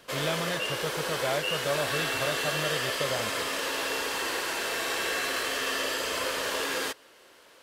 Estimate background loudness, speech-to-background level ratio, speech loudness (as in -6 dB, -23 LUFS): -29.0 LUFS, -5.0 dB, -34.0 LUFS